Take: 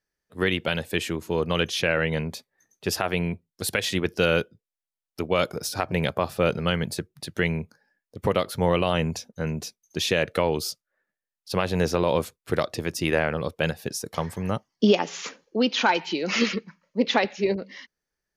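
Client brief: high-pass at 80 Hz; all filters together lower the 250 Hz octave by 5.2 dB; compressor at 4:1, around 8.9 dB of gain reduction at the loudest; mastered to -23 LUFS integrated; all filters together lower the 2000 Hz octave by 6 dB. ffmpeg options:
-af "highpass=80,equalizer=f=250:t=o:g=-7.5,equalizer=f=2k:t=o:g=-8,acompressor=threshold=-29dB:ratio=4,volume=11.5dB"

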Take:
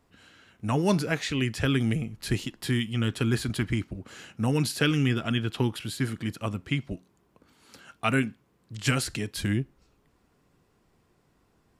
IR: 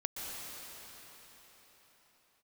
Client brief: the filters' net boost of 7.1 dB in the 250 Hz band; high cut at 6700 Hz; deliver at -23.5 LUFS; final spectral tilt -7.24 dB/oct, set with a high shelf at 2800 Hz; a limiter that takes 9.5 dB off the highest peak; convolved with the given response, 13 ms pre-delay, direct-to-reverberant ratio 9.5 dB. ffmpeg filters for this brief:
-filter_complex "[0:a]lowpass=6.7k,equalizer=f=250:t=o:g=8.5,highshelf=f=2.8k:g=-7,alimiter=limit=-16dB:level=0:latency=1,asplit=2[a][b];[1:a]atrim=start_sample=2205,adelay=13[c];[b][c]afir=irnorm=-1:irlink=0,volume=-12.5dB[d];[a][d]amix=inputs=2:normalize=0,volume=3.5dB"

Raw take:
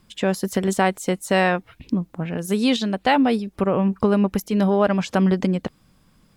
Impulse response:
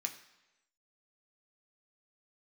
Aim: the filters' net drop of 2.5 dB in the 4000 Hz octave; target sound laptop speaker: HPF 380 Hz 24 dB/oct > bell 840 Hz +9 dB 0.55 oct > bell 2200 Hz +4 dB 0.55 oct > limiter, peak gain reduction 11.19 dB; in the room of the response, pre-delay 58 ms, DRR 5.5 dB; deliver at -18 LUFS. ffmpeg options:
-filter_complex "[0:a]equalizer=f=4k:t=o:g=-5,asplit=2[a][b];[1:a]atrim=start_sample=2205,adelay=58[c];[b][c]afir=irnorm=-1:irlink=0,volume=-5dB[d];[a][d]amix=inputs=2:normalize=0,highpass=f=380:w=0.5412,highpass=f=380:w=1.3066,equalizer=f=840:t=o:w=0.55:g=9,equalizer=f=2.2k:t=o:w=0.55:g=4,volume=7.5dB,alimiter=limit=-5.5dB:level=0:latency=1"

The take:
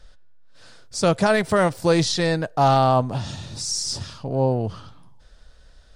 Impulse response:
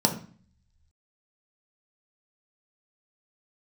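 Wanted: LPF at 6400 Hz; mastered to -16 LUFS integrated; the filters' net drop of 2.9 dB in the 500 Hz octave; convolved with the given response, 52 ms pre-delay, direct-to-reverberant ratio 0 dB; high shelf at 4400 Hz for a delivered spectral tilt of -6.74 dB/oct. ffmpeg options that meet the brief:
-filter_complex "[0:a]lowpass=6.4k,equalizer=f=500:t=o:g=-3.5,highshelf=f=4.4k:g=-8,asplit=2[a][b];[1:a]atrim=start_sample=2205,adelay=52[c];[b][c]afir=irnorm=-1:irlink=0,volume=-12.5dB[d];[a][d]amix=inputs=2:normalize=0"

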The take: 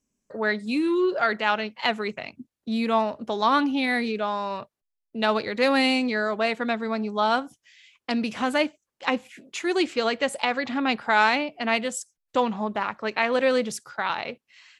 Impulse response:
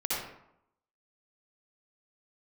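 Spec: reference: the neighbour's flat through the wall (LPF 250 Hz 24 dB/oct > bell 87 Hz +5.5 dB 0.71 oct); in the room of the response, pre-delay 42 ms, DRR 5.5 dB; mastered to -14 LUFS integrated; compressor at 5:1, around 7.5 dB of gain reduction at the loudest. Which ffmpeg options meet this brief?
-filter_complex "[0:a]acompressor=threshold=-25dB:ratio=5,asplit=2[a][b];[1:a]atrim=start_sample=2205,adelay=42[c];[b][c]afir=irnorm=-1:irlink=0,volume=-13dB[d];[a][d]amix=inputs=2:normalize=0,lowpass=f=250:w=0.5412,lowpass=f=250:w=1.3066,equalizer=f=87:t=o:w=0.71:g=5.5,volume=23.5dB"

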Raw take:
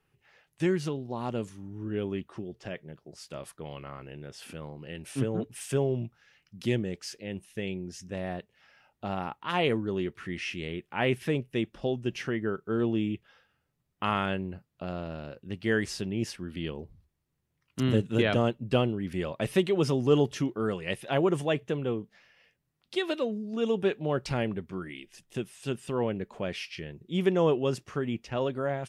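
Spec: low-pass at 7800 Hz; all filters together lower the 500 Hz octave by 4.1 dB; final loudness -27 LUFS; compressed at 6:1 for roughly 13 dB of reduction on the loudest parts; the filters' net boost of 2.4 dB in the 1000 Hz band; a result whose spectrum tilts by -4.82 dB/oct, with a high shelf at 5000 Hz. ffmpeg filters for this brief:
-af "lowpass=7.8k,equalizer=f=500:t=o:g=-6.5,equalizer=f=1k:t=o:g=5,highshelf=f=5k:g=8.5,acompressor=threshold=-35dB:ratio=6,volume=13.5dB"

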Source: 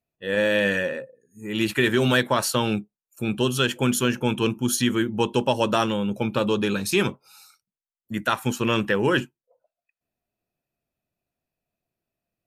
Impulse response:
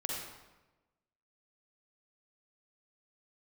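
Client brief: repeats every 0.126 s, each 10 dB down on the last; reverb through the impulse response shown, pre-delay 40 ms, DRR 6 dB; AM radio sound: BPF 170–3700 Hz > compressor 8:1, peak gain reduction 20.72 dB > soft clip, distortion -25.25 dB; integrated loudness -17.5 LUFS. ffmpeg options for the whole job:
-filter_complex "[0:a]aecho=1:1:126|252|378|504:0.316|0.101|0.0324|0.0104,asplit=2[a][b];[1:a]atrim=start_sample=2205,adelay=40[c];[b][c]afir=irnorm=-1:irlink=0,volume=-9dB[d];[a][d]amix=inputs=2:normalize=0,highpass=170,lowpass=3.7k,acompressor=threshold=-35dB:ratio=8,asoftclip=threshold=-25dB,volume=21.5dB"

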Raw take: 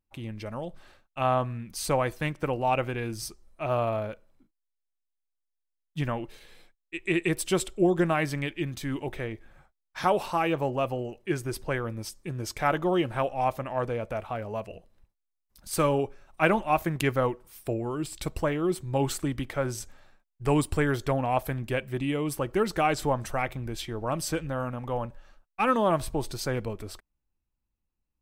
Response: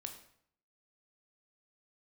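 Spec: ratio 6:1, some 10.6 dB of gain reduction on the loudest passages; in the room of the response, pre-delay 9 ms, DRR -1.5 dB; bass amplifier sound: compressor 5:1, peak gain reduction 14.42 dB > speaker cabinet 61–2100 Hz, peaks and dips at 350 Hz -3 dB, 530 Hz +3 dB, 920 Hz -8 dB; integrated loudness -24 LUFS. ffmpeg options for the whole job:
-filter_complex "[0:a]acompressor=threshold=-30dB:ratio=6,asplit=2[a][b];[1:a]atrim=start_sample=2205,adelay=9[c];[b][c]afir=irnorm=-1:irlink=0,volume=5dB[d];[a][d]amix=inputs=2:normalize=0,acompressor=threshold=-39dB:ratio=5,highpass=f=61:w=0.5412,highpass=f=61:w=1.3066,equalizer=f=350:t=q:w=4:g=-3,equalizer=f=530:t=q:w=4:g=3,equalizer=f=920:t=q:w=4:g=-8,lowpass=f=2.1k:w=0.5412,lowpass=f=2.1k:w=1.3066,volume=19.5dB"

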